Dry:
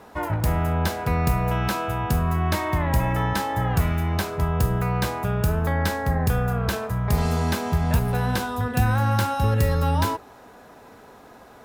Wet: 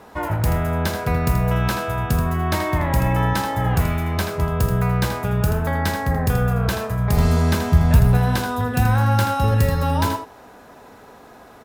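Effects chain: 7.17–8.17 low shelf 140 Hz +9 dB; on a send: echo 81 ms -8 dB; on the sum: gain +2 dB

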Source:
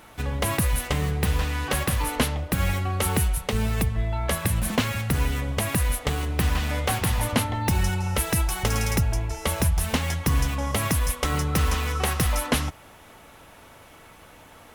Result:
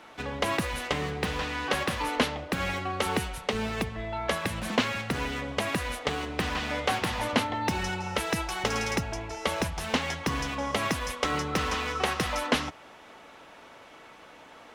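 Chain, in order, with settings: three-band isolator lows -15 dB, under 200 Hz, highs -18 dB, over 6600 Hz

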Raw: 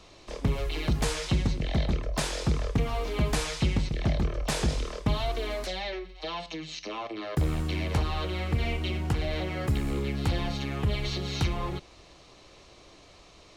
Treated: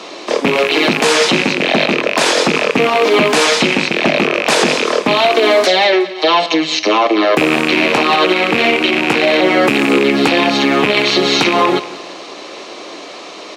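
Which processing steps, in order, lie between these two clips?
rattling part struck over -29 dBFS, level -22 dBFS; HPF 250 Hz 24 dB/oct; high shelf 7700 Hz -11.5 dB; on a send: feedback echo 0.184 s, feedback 39%, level -18 dB; on the sum: maximiser +25.5 dB; gain -1 dB

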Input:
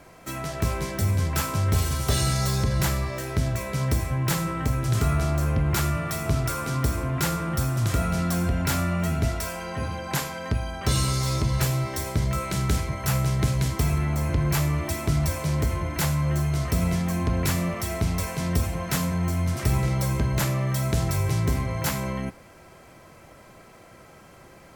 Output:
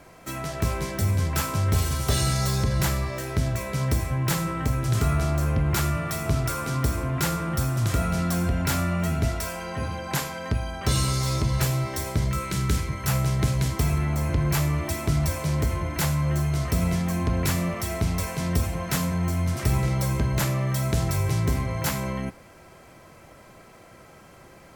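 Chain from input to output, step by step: 12.29–13.07 bell 700 Hz -13 dB 0.37 oct

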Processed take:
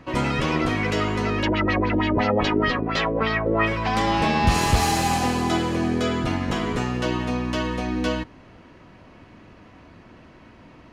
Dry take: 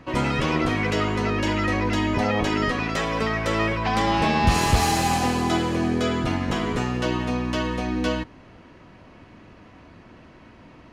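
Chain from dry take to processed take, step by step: 1.42–3.65 LFO low-pass sine 7.8 Hz -> 2.3 Hz 400–4400 Hz

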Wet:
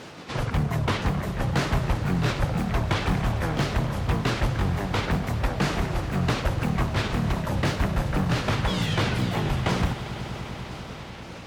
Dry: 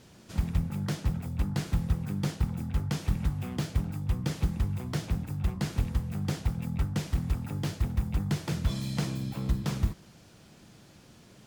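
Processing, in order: repeated pitch sweeps -9 st, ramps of 0.51 s; overdrive pedal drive 25 dB, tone 1500 Hz, clips at -15 dBFS; swelling echo 99 ms, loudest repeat 5, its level -17.5 dB; gain +3.5 dB

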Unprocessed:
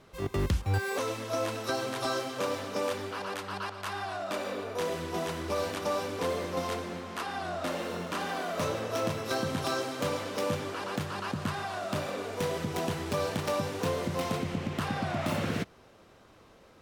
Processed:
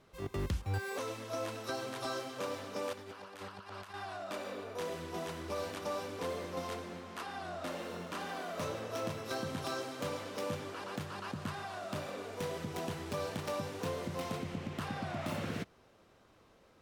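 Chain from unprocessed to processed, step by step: 2.93–3.94 negative-ratio compressor -40 dBFS, ratio -0.5; gain -7 dB

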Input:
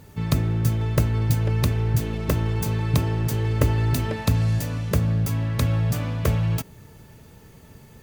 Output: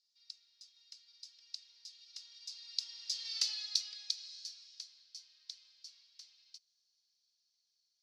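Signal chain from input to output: Doppler pass-by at 3.43, 20 m/s, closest 3.9 m; Butterworth band-pass 4800 Hz, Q 3.1; gain +14 dB

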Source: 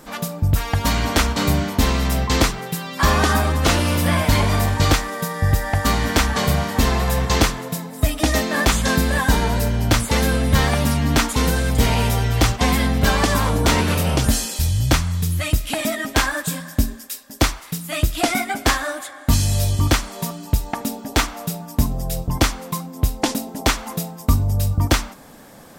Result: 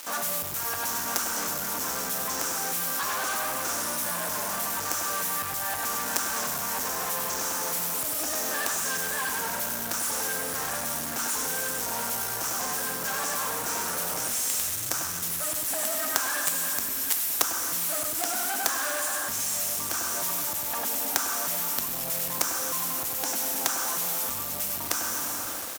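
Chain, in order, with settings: elliptic band-stop 1600–5600 Hz; on a send at -10.5 dB: high shelf 8800 Hz +11.5 dB + reverb RT60 2.4 s, pre-delay 32 ms; on the sum: compressor 6:1, threshold -23 dBFS, peak gain reduction 12.5 dB; tilt +2 dB/oct; echo 98 ms -5.5 dB; companded quantiser 2-bit; HPF 640 Hz 6 dB/oct; gain -2 dB

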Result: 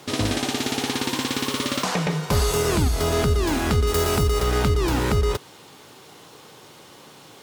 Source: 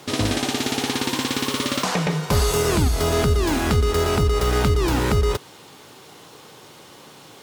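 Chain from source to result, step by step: 3.87–4.41 high shelf 7300 Hz +10 dB; gain -1.5 dB

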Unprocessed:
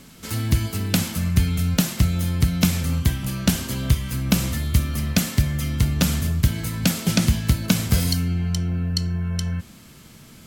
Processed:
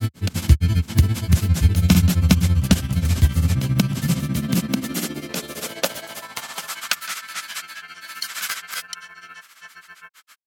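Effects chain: grains 96 ms, grains 15/s, spray 0.817 s, pitch spread up and down by 0 st; high-pass sweep 76 Hz -> 1400 Hz, 3.21–7.06; gain +2.5 dB

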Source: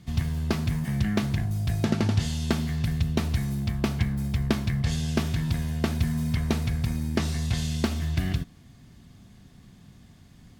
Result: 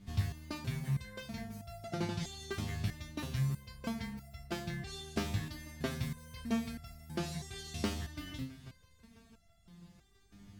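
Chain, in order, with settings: hum 50 Hz, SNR 25 dB; multi-head echo 0.165 s, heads second and third, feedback 71%, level -22 dB; stepped resonator 3.1 Hz 100–680 Hz; gain +3.5 dB

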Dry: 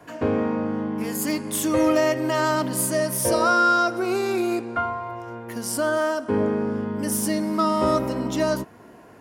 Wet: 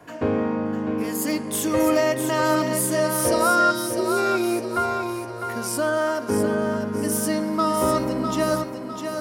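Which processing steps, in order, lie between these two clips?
spectral gain 3.71–4.17, 420–3000 Hz -17 dB; thinning echo 0.653 s, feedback 44%, high-pass 180 Hz, level -6.5 dB

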